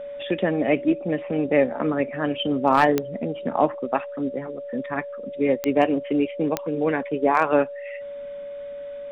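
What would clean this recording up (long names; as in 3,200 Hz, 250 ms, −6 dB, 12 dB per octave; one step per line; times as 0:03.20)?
clipped peaks rebuilt −6.5 dBFS
click removal
notch filter 570 Hz, Q 30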